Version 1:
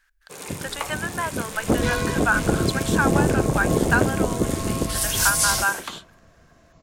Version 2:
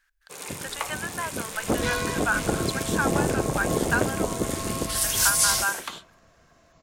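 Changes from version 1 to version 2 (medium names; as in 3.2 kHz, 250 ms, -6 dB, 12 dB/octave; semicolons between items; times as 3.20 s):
speech -3.5 dB; master: add bass shelf 470 Hz -7 dB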